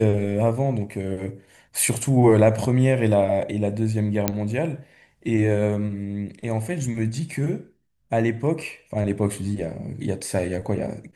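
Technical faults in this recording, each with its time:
4.28 pop -4 dBFS

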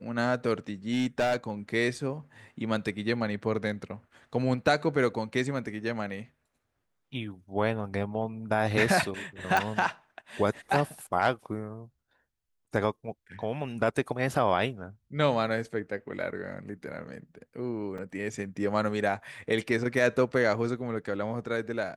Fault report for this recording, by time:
0.91–1.5 clipped -22 dBFS
9.57 pop
17.98 gap 3.7 ms

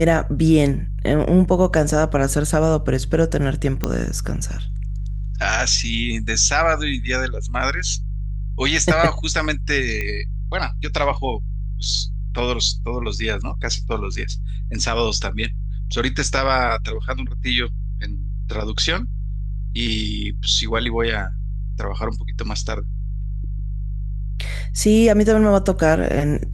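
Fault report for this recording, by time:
hum 50 Hz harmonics 3 -25 dBFS
3.84 pop -6 dBFS
10.01 pop -12 dBFS

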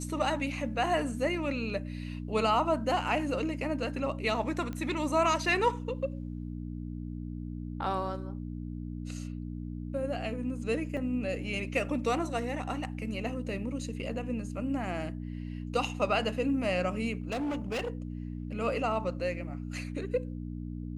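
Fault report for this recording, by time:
hum 60 Hz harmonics 5 -38 dBFS
4.73 pop -25 dBFS
10.97 gap 2.7 ms
17.22–17.9 clipped -29.5 dBFS

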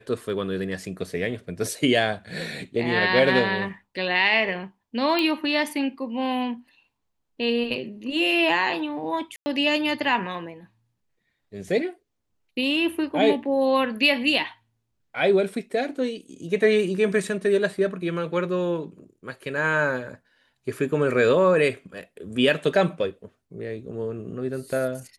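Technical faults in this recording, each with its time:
5.19 pop -11 dBFS
9.36–9.46 gap 0.1 s

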